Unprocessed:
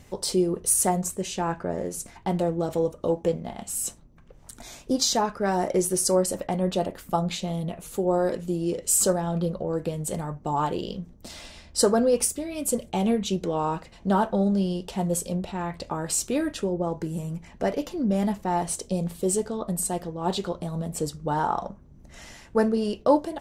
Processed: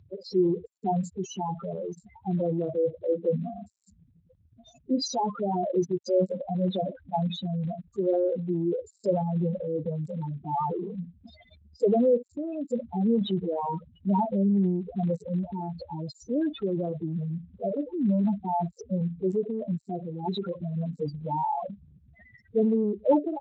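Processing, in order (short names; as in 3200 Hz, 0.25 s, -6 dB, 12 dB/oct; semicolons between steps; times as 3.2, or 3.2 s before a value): loudest bins only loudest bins 4; transient shaper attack -1 dB, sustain +6 dB; Speex 34 kbps 16000 Hz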